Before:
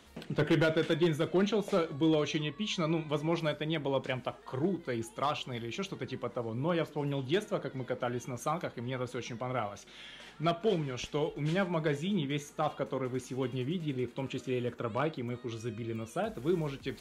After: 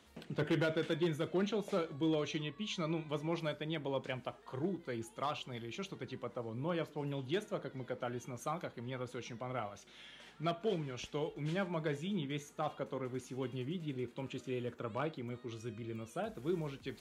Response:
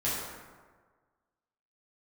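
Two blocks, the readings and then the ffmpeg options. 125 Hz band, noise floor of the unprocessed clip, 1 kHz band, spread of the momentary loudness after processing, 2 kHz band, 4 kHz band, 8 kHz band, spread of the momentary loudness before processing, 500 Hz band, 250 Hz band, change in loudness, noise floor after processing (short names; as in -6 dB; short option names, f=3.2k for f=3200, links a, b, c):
-6.0 dB, -53 dBFS, -6.0 dB, 9 LU, -6.0 dB, -6.0 dB, -6.0 dB, 9 LU, -6.0 dB, -6.0 dB, -6.0 dB, -60 dBFS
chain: -af "highpass=46,volume=-6dB"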